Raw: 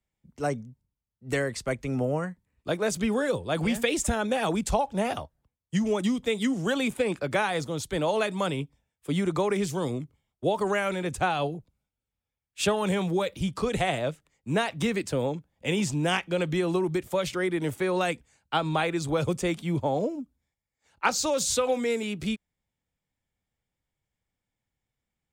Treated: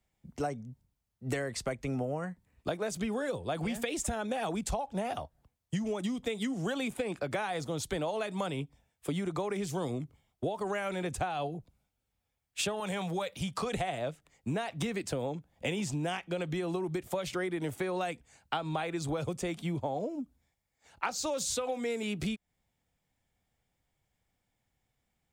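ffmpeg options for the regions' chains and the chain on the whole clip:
-filter_complex "[0:a]asettb=1/sr,asplit=3[a][b][c];[a]atrim=end=12.804[d];[b]atrim=start=12.8:end=13.73,asetpts=PTS-STARTPTS,afade=t=in:d=0.004:c=qsin,afade=t=out:st=0.926:d=0.004:c=qsin,highpass=f=210:p=1,equalizer=f=330:t=o:w=0.8:g=-9[e];[c]atrim=start=13.726[f];[d][e]acrossfade=d=0.004:c1=hsin:c2=qsin[g];[g][f]acrossfade=d=0.004:c1=qsin:c2=hsin,equalizer=f=720:w=5:g=5.5,acompressor=threshold=-36dB:ratio=8,volume=5dB"

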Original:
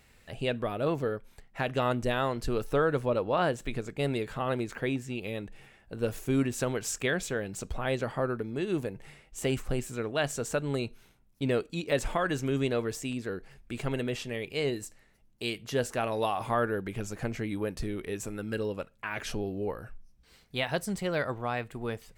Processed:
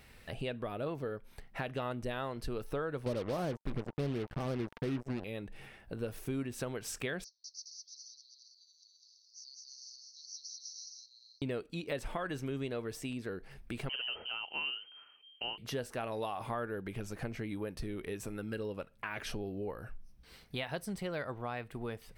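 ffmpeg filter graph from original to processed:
-filter_complex "[0:a]asettb=1/sr,asplit=3[a][b][c];[a]atrim=end=3.064[d];[b]atrim=start=3.06:end=5.24,asetpts=PTS-STARTPTS,afade=t=in:d=0.004:c=qsin,afade=t=out:st=2.176:d=0.004:c=qsin,tiltshelf=f=860:g=9.5,acrusher=bits=4:mix=0:aa=0.5,bandreject=f=910:w=25[e];[c]atrim=start=5.236[f];[d][e]acrossfade=d=0.004:c1=hsin:c2=qsin[g];[g][f]acrossfade=d=0.004:c1=qsin:c2=hsin,asettb=1/sr,asplit=3[h][i][j];[h]atrim=end=7.244[k];[i]atrim=start=7.24:end=11.42,asetpts=PTS-STARTPTS,afade=t=in:d=0.004:c=qsin,afade=t=out:st=4.176:d=0.004:c=qsin,asuperpass=centerf=5200:order=12:qfactor=2.7,aecho=1:1:200|330|414.5|469.4|505.1|528.3:0.794|0.631|0.501|0.398|0.316|0.251,atrim=end_sample=184338[l];[j]atrim=start=11.416[m];[k][l]acrossfade=d=0.004:c1=hsin:c2=qsin[n];[n][m]acrossfade=d=0.004:c1=qsin:c2=hsin,asettb=1/sr,asplit=3[o][p][q];[o]atrim=end=13.894[r];[p]atrim=start=13.89:end=15.58,asetpts=PTS-STARTPTS,afade=t=in:d=0.004:c=qsin,afade=t=out:st=1.686:d=0.004:c=qsin,bandreject=f=2.1k:w=21,lowpass=f=2.7k:t=q:w=0.5098,lowpass=f=2.7k:t=q:w=0.6013,lowpass=f=2.7k:t=q:w=0.9,lowpass=f=2.7k:t=q:w=2.563,afreqshift=-3200[s];[q]atrim=start=15.576[t];[r][s]acrossfade=d=0.004:c1=hsin:c2=qsin[u];[u][t]acrossfade=d=0.004:c1=qsin:c2=hsin,equalizer=f=7.1k:w=4.5:g=-9.5,acompressor=threshold=-43dB:ratio=2.5,volume=3dB"

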